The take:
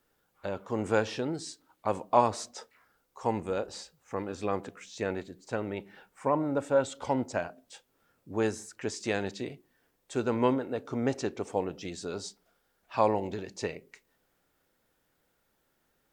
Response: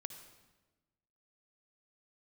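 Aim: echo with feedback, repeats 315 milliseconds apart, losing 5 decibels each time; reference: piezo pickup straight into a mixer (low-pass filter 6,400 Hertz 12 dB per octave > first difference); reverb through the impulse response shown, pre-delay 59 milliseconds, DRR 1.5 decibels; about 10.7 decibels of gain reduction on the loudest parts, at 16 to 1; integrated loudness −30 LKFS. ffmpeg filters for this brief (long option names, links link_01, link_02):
-filter_complex "[0:a]acompressor=threshold=-29dB:ratio=16,aecho=1:1:315|630|945|1260|1575|1890|2205:0.562|0.315|0.176|0.0988|0.0553|0.031|0.0173,asplit=2[link_01][link_02];[1:a]atrim=start_sample=2205,adelay=59[link_03];[link_02][link_03]afir=irnorm=-1:irlink=0,volume=2dB[link_04];[link_01][link_04]amix=inputs=2:normalize=0,lowpass=6400,aderivative,volume=19dB"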